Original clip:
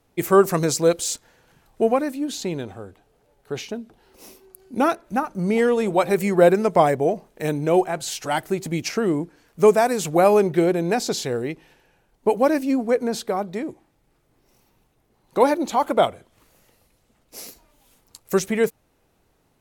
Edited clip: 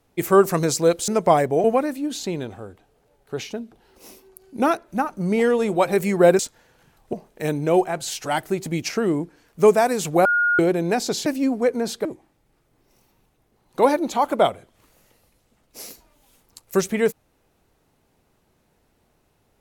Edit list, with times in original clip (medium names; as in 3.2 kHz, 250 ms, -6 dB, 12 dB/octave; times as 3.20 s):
1.08–1.82 s: swap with 6.57–7.13 s
10.25–10.59 s: bleep 1.43 kHz -16 dBFS
11.26–12.53 s: delete
13.32–13.63 s: delete